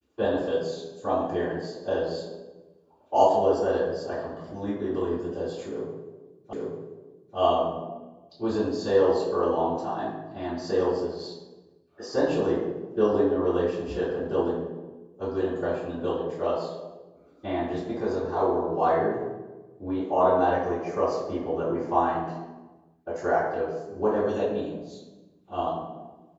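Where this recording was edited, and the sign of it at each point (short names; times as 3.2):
6.53 repeat of the last 0.84 s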